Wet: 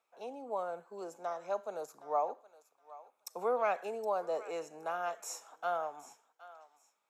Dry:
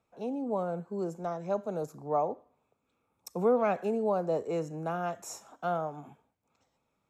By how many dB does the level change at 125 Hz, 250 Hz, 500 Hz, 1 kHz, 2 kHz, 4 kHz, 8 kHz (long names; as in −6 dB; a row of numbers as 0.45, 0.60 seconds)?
below −20 dB, −16.5 dB, −5.5 dB, −2.0 dB, 0.0 dB, can't be measured, 0.0 dB